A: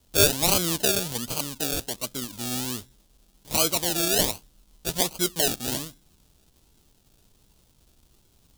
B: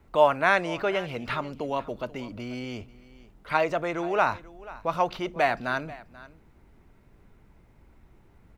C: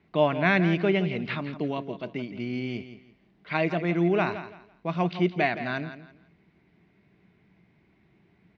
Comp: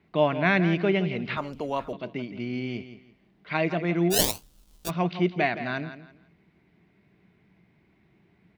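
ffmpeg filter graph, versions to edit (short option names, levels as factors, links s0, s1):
-filter_complex "[2:a]asplit=3[s0][s1][s2];[s0]atrim=end=1.372[s3];[1:a]atrim=start=1.368:end=1.932[s4];[s1]atrim=start=1.928:end=4.16[s5];[0:a]atrim=start=4.1:end=4.91[s6];[s2]atrim=start=4.85[s7];[s3][s4]acrossfade=d=0.004:c1=hsin:c2=hsin[s8];[s8][s5]acrossfade=d=0.004:c1=hsin:c2=hsin[s9];[s9][s6]acrossfade=d=0.06:c1=tri:c2=tri[s10];[s10][s7]acrossfade=d=0.06:c1=tri:c2=tri"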